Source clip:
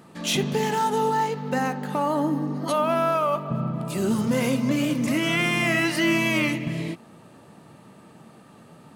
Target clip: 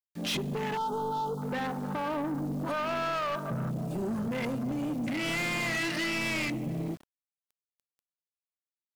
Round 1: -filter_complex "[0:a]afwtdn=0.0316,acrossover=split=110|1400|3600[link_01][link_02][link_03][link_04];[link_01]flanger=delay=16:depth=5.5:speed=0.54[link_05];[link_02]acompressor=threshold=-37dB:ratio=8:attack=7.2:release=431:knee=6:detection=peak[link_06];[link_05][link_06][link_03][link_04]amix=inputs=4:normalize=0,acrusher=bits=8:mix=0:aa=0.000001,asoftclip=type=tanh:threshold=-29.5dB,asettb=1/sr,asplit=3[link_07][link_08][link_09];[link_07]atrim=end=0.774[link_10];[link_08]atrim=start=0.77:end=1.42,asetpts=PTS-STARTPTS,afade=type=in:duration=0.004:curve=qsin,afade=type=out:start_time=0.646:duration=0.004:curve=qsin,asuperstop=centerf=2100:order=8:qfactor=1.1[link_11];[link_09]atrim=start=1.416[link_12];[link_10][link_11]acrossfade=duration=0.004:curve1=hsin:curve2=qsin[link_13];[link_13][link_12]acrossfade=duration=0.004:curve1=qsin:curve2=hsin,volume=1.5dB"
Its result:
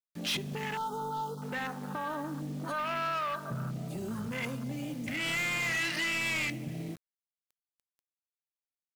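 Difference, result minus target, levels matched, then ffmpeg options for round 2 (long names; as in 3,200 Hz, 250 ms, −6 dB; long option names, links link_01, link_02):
downward compressor: peak gain reduction +9.5 dB
-filter_complex "[0:a]afwtdn=0.0316,acrossover=split=110|1400|3600[link_01][link_02][link_03][link_04];[link_01]flanger=delay=16:depth=5.5:speed=0.54[link_05];[link_02]acompressor=threshold=-26dB:ratio=8:attack=7.2:release=431:knee=6:detection=peak[link_06];[link_05][link_06][link_03][link_04]amix=inputs=4:normalize=0,acrusher=bits=8:mix=0:aa=0.000001,asoftclip=type=tanh:threshold=-29.5dB,asettb=1/sr,asplit=3[link_07][link_08][link_09];[link_07]atrim=end=0.774[link_10];[link_08]atrim=start=0.77:end=1.42,asetpts=PTS-STARTPTS,afade=type=in:duration=0.004:curve=qsin,afade=type=out:start_time=0.646:duration=0.004:curve=qsin,asuperstop=centerf=2100:order=8:qfactor=1.1[link_11];[link_09]atrim=start=1.416[link_12];[link_10][link_11]acrossfade=duration=0.004:curve1=hsin:curve2=qsin[link_13];[link_13][link_12]acrossfade=duration=0.004:curve1=qsin:curve2=hsin,volume=1.5dB"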